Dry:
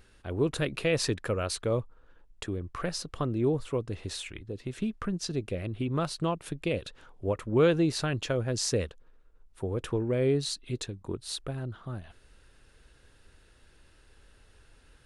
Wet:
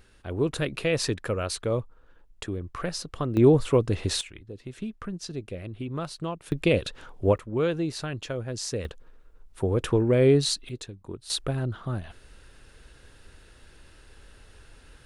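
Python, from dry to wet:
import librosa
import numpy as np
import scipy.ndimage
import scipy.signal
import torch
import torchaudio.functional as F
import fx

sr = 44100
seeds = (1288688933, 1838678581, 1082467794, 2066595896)

y = fx.gain(x, sr, db=fx.steps((0.0, 1.5), (3.37, 9.5), (4.21, -3.0), (6.52, 8.0), (7.38, -3.0), (8.85, 7.0), (10.69, -3.0), (11.3, 7.0)))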